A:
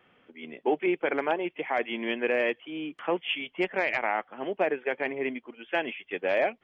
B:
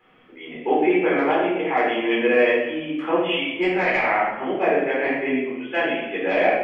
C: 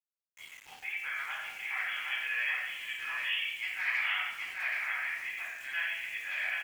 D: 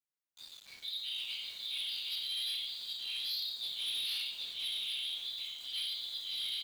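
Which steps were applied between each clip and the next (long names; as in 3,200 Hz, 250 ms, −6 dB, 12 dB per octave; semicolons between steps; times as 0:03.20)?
rectangular room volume 400 cubic metres, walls mixed, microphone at 4 metres; level −2.5 dB
inverse Chebyshev high-pass filter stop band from 240 Hz, stop band 80 dB; centre clipping without the shift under −41.5 dBFS; single-tap delay 776 ms −3.5 dB; level −7.5 dB
band-splitting scrambler in four parts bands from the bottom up 4123; gain into a clipping stage and back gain 31.5 dB; level −2 dB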